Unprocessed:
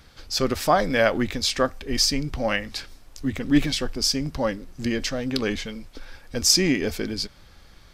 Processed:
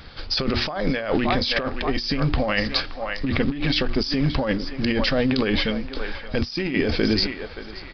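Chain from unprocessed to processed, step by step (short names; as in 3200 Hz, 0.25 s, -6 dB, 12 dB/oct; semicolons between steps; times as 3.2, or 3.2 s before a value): rattling part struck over -23 dBFS, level -23 dBFS; notches 60/120/180/240/300/360 Hz; companded quantiser 6-bit; on a send: narrowing echo 0.573 s, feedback 44%, band-pass 1100 Hz, level -12 dB; on the sum: negative-ratio compressor -28 dBFS, ratio -1; downsampling 11025 Hz; gain +6 dB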